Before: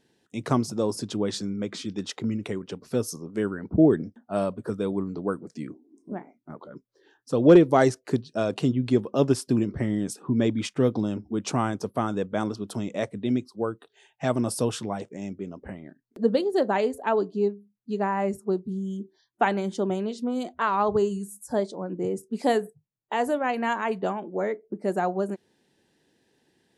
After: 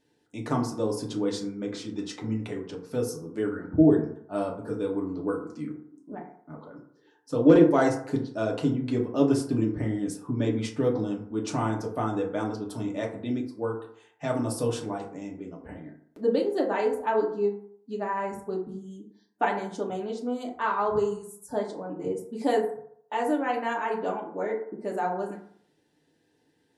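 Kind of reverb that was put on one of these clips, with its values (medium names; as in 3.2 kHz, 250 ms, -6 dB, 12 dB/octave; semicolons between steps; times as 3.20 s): FDN reverb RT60 0.64 s, low-frequency decay 0.85×, high-frequency decay 0.4×, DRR -1 dB; trim -6 dB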